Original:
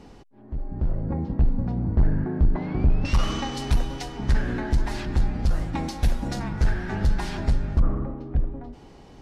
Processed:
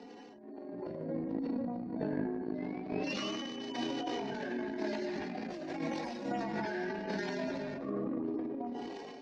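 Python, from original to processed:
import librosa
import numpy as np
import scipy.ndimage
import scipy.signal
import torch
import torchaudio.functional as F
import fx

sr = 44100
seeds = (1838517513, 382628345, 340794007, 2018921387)

y = fx.hpss_only(x, sr, part='harmonic')
y = fx.dynamic_eq(y, sr, hz=1100.0, q=0.85, threshold_db=-48.0, ratio=4.0, max_db=-3)
y = fx.chorus_voices(y, sr, voices=4, hz=1.4, base_ms=20, depth_ms=3.0, mix_pct=60, at=(3.96, 6.22))
y = fx.cabinet(y, sr, low_hz=250.0, low_slope=24, high_hz=5600.0, hz=(720.0, 1300.0, 3200.0), db=(4, -10, -5))
y = fx.notch(y, sr, hz=810.0, q=12.0)
y = y + 10.0 ** (-9.5 / 20.0) * np.pad(y, (int(149 * sr / 1000.0), 0))[:len(y)]
y = fx.transient(y, sr, attack_db=-9, sustain_db=10)
y = fx.over_compress(y, sr, threshold_db=-38.0, ratio=-0.5)
y = fx.transient(y, sr, attack_db=8, sustain_db=4)
y = fx.sustainer(y, sr, db_per_s=23.0)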